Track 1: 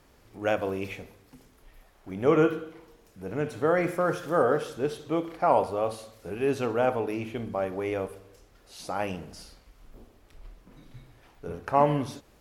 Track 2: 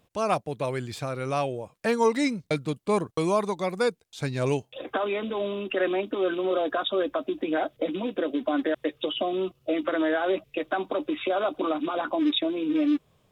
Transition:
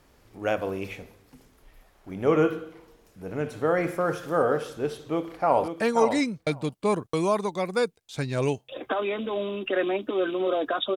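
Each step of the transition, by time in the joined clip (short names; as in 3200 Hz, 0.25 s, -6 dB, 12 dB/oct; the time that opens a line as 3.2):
track 1
5.01–5.68 echo throw 0.53 s, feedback 10%, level -7 dB
5.68 switch to track 2 from 1.72 s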